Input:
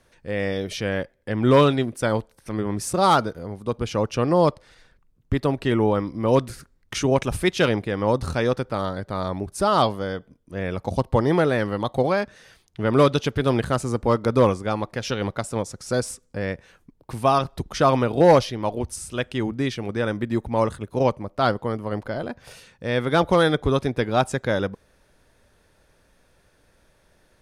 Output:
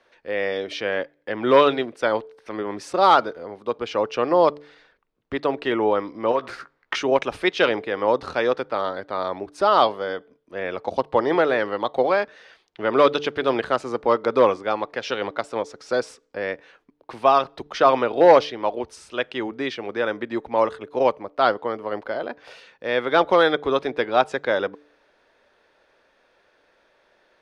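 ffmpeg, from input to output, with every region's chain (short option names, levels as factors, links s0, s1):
-filter_complex "[0:a]asettb=1/sr,asplit=3[s0][s1][s2];[s0]atrim=end=6.314[s3];[s1]atrim=start=6.31:end=6.96,asetpts=PTS-STARTPTS,afade=t=in:d=0.004:c=qsin,afade=t=out:st=0.646:d=0.004:c=qsin,equalizer=f=1200:t=o:w=2:g=11,acompressor=threshold=0.1:ratio=8:attack=3.2:release=140:knee=1:detection=peak,asplit=2[s4][s5];[s5]adelay=15,volume=0.355[s6];[s4][s6]amix=inputs=2:normalize=0,atrim=end_sample=28665[s7];[s2]atrim=start=6.956[s8];[s3][s7]acrossfade=d=0.004:c1=hsin:c2=qsin[s9];[s9][s8]acrossfade=d=0.004:c1=qsin:c2=hsin,acrossover=split=310 4800:gain=0.0794 1 0.0631[s10][s11][s12];[s10][s11][s12]amix=inputs=3:normalize=0,bandreject=f=146.9:t=h:w=4,bandreject=f=293.8:t=h:w=4,bandreject=f=440.7:t=h:w=4,volume=1.41"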